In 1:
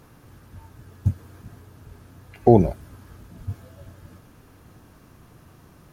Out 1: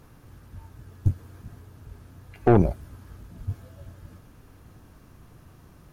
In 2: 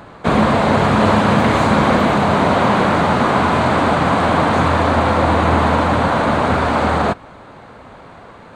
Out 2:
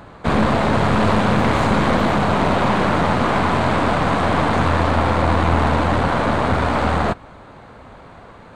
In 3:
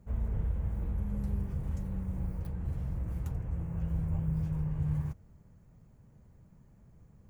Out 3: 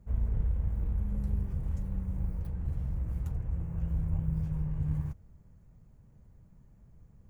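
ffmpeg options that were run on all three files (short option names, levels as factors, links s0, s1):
-af "lowshelf=f=74:g=9,aeval=exprs='(tanh(3.16*val(0)+0.6)-tanh(0.6))/3.16':c=same"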